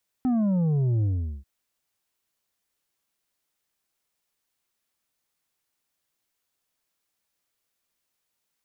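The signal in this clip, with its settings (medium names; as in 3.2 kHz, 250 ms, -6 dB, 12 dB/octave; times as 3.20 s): sub drop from 260 Hz, over 1.19 s, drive 6 dB, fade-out 0.41 s, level -21 dB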